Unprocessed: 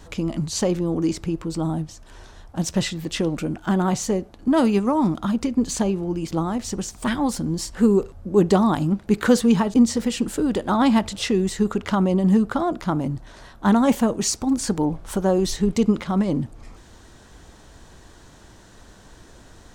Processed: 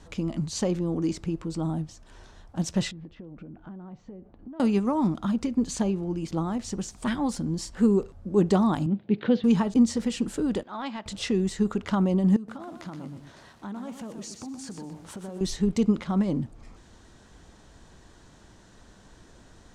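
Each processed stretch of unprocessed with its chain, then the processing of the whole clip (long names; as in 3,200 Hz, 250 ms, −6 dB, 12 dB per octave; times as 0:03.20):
0:02.91–0:04.60: downward compressor 12 to 1, threshold −33 dBFS + head-to-tape spacing loss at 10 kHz 43 dB
0:08.86–0:09.44: elliptic band-pass filter 110–3,500 Hz + parametric band 1,200 Hz −10 dB 1.1 octaves
0:10.63–0:11.06: high-pass filter 1,200 Hz 6 dB per octave + transient designer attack −11 dB, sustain −3 dB + high-frequency loss of the air 140 metres
0:12.36–0:15.41: high-pass filter 96 Hz + downward compressor 5 to 1, threshold −32 dBFS + feedback echo at a low word length 123 ms, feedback 35%, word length 8 bits, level −6.5 dB
whole clip: low-pass filter 9,800 Hz 12 dB per octave; parametric band 190 Hz +3 dB 0.99 octaves; level −6 dB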